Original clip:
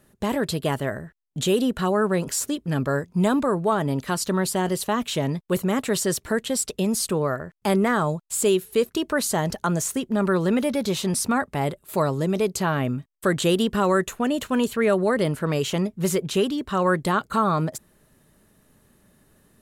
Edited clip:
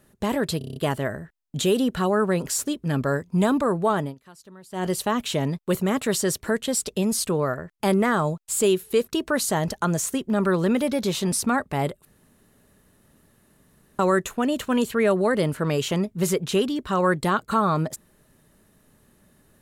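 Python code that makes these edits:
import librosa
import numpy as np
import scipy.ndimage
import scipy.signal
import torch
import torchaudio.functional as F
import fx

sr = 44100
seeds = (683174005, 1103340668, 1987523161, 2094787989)

y = fx.edit(x, sr, fx.stutter(start_s=0.58, slice_s=0.03, count=7),
    fx.fade_down_up(start_s=3.8, length_s=0.89, db=-23.0, fade_s=0.17),
    fx.room_tone_fill(start_s=11.87, length_s=1.94), tone=tone)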